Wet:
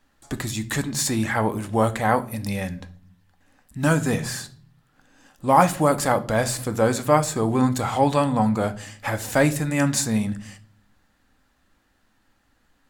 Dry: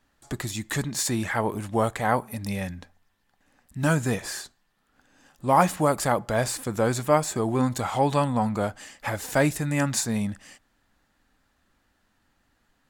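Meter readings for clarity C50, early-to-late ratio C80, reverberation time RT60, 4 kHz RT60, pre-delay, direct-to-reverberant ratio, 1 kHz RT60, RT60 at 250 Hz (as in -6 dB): 18.0 dB, 22.5 dB, 0.50 s, 0.40 s, 4 ms, 10.5 dB, 0.40 s, 0.90 s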